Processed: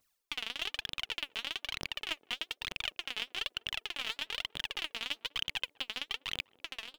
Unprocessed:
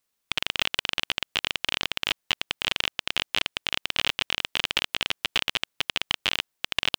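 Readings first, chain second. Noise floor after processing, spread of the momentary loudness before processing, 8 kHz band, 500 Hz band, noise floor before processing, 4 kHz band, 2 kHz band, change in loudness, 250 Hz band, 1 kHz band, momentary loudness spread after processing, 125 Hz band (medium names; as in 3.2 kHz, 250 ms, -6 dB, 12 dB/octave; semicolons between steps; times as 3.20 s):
-79 dBFS, 3 LU, -11.5 dB, -11.5 dB, -79 dBFS, -10.0 dB, -10.5 dB, -10.0 dB, -12.0 dB, -11.5 dB, 3 LU, -12.0 dB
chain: fade out at the end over 1.80 s; reverse; compression 12:1, threshold -34 dBFS, peak gain reduction 16.5 dB; reverse; phaser 1.1 Hz, delay 4.7 ms, feedback 74%; peaking EQ 180 Hz -2.5 dB 0.68 oct; band-passed feedback delay 200 ms, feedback 76%, band-pass 410 Hz, level -19.5 dB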